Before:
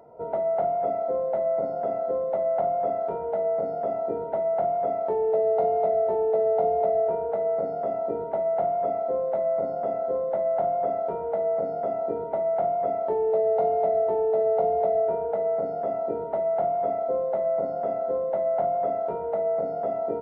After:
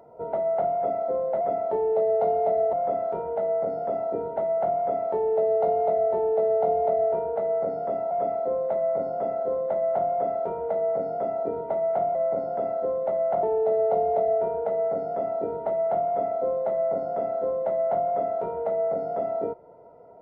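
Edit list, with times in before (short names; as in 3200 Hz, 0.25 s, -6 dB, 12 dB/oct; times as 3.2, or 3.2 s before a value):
1.41–2.69 swap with 12.78–14.1
8.07–8.74 cut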